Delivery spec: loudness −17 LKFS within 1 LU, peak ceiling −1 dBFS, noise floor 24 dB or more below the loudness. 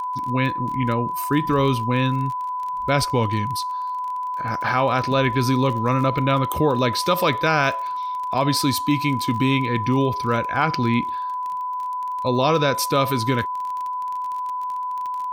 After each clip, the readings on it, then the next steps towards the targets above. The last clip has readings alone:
crackle rate 27 per second; interfering tone 1,000 Hz; level of the tone −24 dBFS; integrated loudness −22.0 LKFS; sample peak −6.0 dBFS; target loudness −17.0 LKFS
→ click removal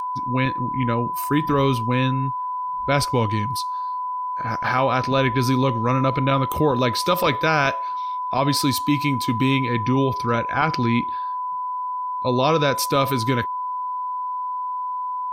crackle rate 0.065 per second; interfering tone 1,000 Hz; level of the tone −24 dBFS
→ notch filter 1,000 Hz, Q 30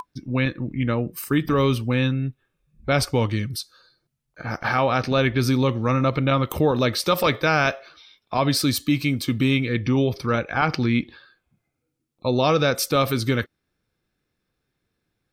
interfering tone none found; integrated loudness −22.5 LKFS; sample peak −7.0 dBFS; target loudness −17.0 LKFS
→ level +5.5 dB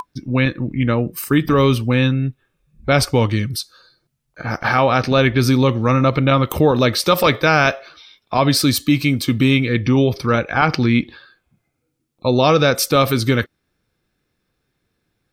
integrated loudness −17.0 LKFS; sample peak −1.5 dBFS; background noise floor −73 dBFS

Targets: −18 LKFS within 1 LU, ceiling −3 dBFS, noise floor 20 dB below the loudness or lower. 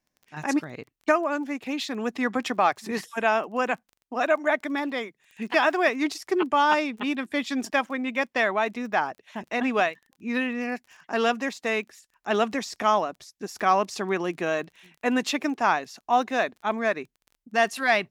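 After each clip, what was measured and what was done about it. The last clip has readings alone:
crackle rate 20 per second; integrated loudness −26.0 LKFS; sample peak −8.0 dBFS; target loudness −18.0 LKFS
→ click removal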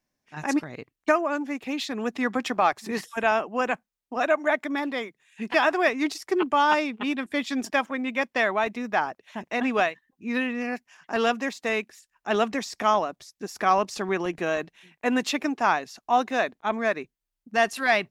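crackle rate 0 per second; integrated loudness −26.0 LKFS; sample peak −8.0 dBFS; target loudness −18.0 LKFS
→ level +8 dB
brickwall limiter −3 dBFS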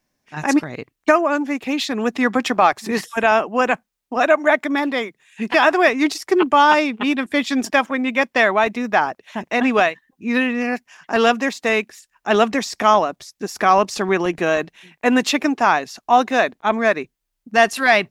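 integrated loudness −18.5 LKFS; sample peak −3.0 dBFS; background noise floor −77 dBFS

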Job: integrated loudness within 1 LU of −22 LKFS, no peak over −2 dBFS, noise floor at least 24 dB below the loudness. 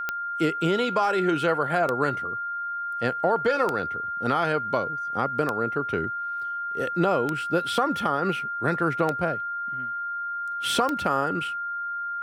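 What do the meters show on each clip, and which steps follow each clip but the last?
number of clicks 7; interfering tone 1,400 Hz; level of the tone −28 dBFS; integrated loudness −26.0 LKFS; sample peak −8.5 dBFS; target loudness −22.0 LKFS
→ click removal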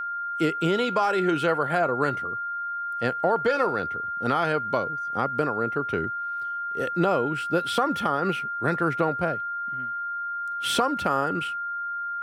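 number of clicks 0; interfering tone 1,400 Hz; level of the tone −28 dBFS
→ notch filter 1,400 Hz, Q 30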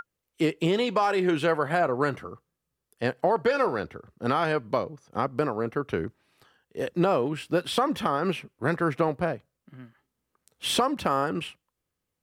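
interfering tone none found; integrated loudness −27.0 LKFS; sample peak −9.5 dBFS; target loudness −22.0 LKFS
→ level +5 dB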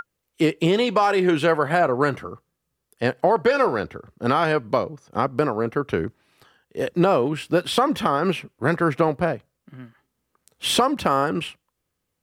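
integrated loudness −22.0 LKFS; sample peak −4.5 dBFS; background noise floor −79 dBFS

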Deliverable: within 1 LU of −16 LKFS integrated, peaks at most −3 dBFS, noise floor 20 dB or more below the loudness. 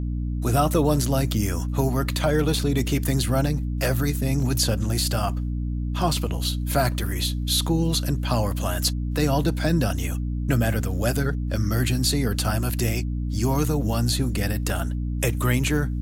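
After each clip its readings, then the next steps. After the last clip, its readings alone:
number of dropouts 5; longest dropout 1.5 ms; mains hum 60 Hz; hum harmonics up to 300 Hz; level of the hum −24 dBFS; integrated loudness −24.0 LKFS; sample peak −8.0 dBFS; target loudness −16.0 LKFS
→ repair the gap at 0:02.59/0:04.40/0:06.17/0:06.99/0:14.70, 1.5 ms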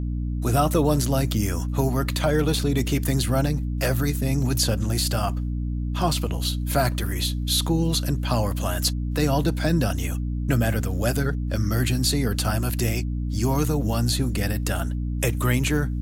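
number of dropouts 0; mains hum 60 Hz; hum harmonics up to 300 Hz; level of the hum −24 dBFS
→ mains-hum notches 60/120/180/240/300 Hz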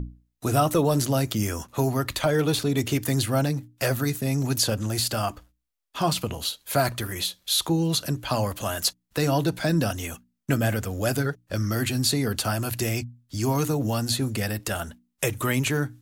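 mains hum none found; integrated loudness −25.5 LKFS; sample peak −9.5 dBFS; target loudness −16.0 LKFS
→ level +9.5 dB
brickwall limiter −3 dBFS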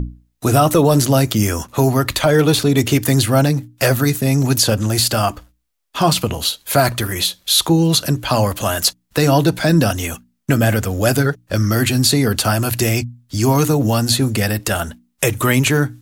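integrated loudness −16.5 LKFS; sample peak −3.0 dBFS; background noise floor −66 dBFS

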